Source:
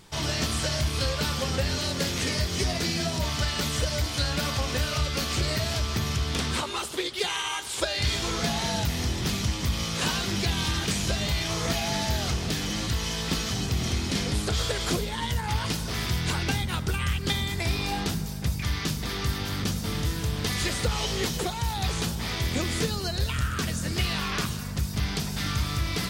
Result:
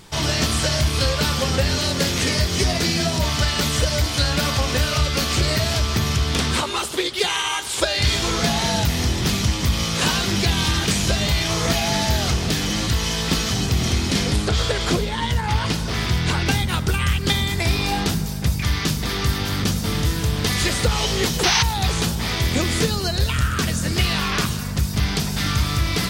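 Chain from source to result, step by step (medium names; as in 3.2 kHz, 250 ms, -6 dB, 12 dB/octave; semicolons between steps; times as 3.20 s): 14.36–16.46 s: treble shelf 8.5 kHz -11 dB; 21.43–21.63 s: painted sound noise 710–6400 Hz -25 dBFS; trim +7 dB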